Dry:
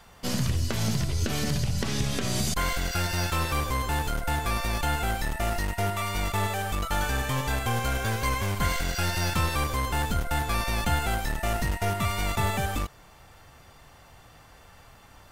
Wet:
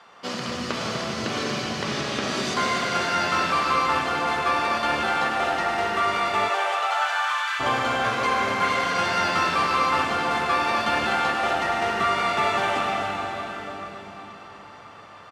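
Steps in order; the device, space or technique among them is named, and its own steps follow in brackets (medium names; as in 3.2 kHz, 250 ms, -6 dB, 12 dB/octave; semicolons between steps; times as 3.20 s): station announcement (band-pass 320–4300 Hz; peaking EQ 1.2 kHz +6.5 dB 0.3 oct; loudspeakers at several distances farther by 52 m -11 dB, 86 m -9 dB; reverberation RT60 4.9 s, pre-delay 94 ms, DRR -0.5 dB); 6.48–7.59 s: high-pass 370 Hz -> 1.2 kHz 24 dB/octave; trim +3 dB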